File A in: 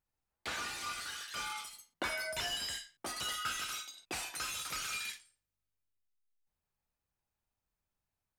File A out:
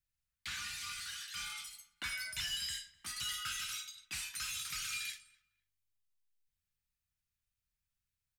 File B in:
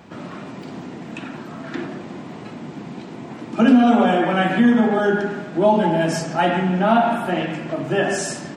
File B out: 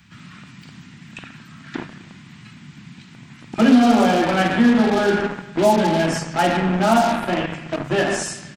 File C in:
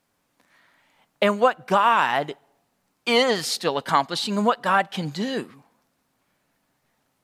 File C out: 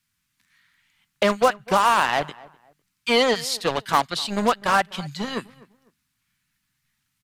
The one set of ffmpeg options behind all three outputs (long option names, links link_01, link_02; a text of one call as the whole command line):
ffmpeg -i in.wav -filter_complex "[0:a]acrossover=split=190|1400|3800[link_01][link_02][link_03][link_04];[link_02]acrusher=bits=3:mix=0:aa=0.5[link_05];[link_01][link_05][link_03][link_04]amix=inputs=4:normalize=0,asplit=2[link_06][link_07];[link_07]adelay=251,lowpass=frequency=1800:poles=1,volume=-21dB,asplit=2[link_08][link_09];[link_09]adelay=251,lowpass=frequency=1800:poles=1,volume=0.29[link_10];[link_06][link_08][link_10]amix=inputs=3:normalize=0" out.wav